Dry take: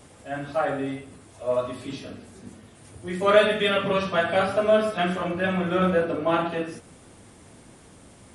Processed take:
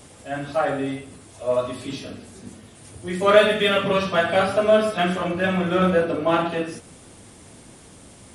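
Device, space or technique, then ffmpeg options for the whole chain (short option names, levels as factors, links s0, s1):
exciter from parts: -filter_complex "[0:a]asplit=2[s0][s1];[s1]highpass=2200,asoftclip=type=tanh:threshold=0.0106,volume=0.531[s2];[s0][s2]amix=inputs=2:normalize=0,volume=1.41"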